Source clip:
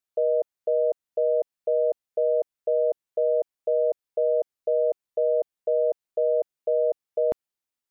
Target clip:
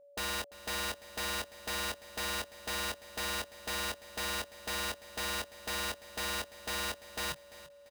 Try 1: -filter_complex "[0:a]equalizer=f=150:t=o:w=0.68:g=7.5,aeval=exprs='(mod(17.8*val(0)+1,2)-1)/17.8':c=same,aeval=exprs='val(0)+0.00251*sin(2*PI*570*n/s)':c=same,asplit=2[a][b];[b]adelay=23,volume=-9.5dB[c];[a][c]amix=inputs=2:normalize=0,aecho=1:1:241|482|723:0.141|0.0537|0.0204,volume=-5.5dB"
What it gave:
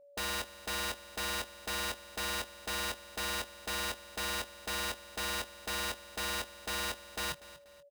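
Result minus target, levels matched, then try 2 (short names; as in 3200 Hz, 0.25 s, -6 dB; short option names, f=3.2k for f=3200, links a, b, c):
echo 0.101 s early
-filter_complex "[0:a]equalizer=f=150:t=o:w=0.68:g=7.5,aeval=exprs='(mod(17.8*val(0)+1,2)-1)/17.8':c=same,aeval=exprs='val(0)+0.00251*sin(2*PI*570*n/s)':c=same,asplit=2[a][b];[b]adelay=23,volume=-9.5dB[c];[a][c]amix=inputs=2:normalize=0,aecho=1:1:342|684|1026:0.141|0.0537|0.0204,volume=-5.5dB"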